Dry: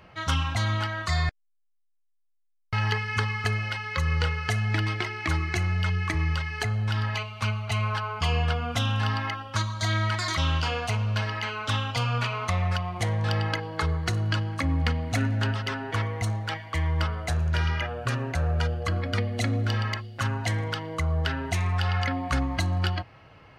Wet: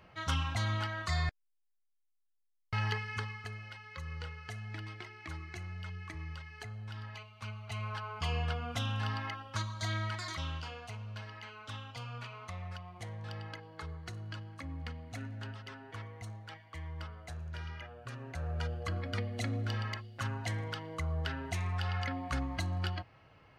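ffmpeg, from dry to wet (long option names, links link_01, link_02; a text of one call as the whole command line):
ffmpeg -i in.wav -af "volume=9dB,afade=type=out:start_time=2.81:duration=0.65:silence=0.316228,afade=type=in:start_time=7.37:duration=0.9:silence=0.398107,afade=type=out:start_time=9.84:duration=0.92:silence=0.398107,afade=type=in:start_time=18.12:duration=0.64:silence=0.398107" out.wav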